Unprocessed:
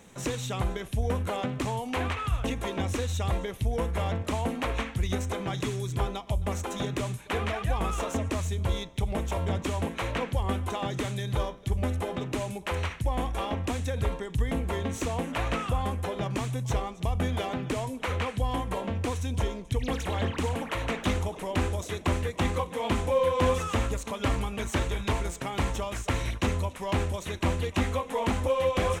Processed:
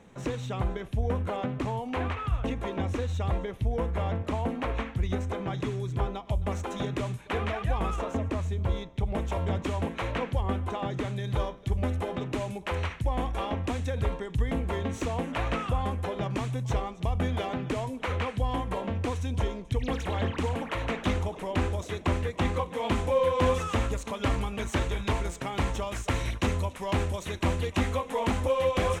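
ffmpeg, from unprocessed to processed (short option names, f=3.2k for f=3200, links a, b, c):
-af "asetnsamples=n=441:p=0,asendcmd='6.25 lowpass f 3200;7.96 lowpass f 1600;9.14 lowpass f 3400;10.41 lowpass f 2000;11.24 lowpass f 4100;22.75 lowpass f 6800;25.87 lowpass f 12000',lowpass=f=1.8k:p=1"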